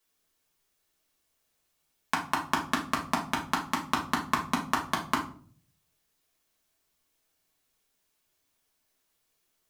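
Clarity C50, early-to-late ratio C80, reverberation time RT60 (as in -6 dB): 9.0 dB, 14.0 dB, 0.50 s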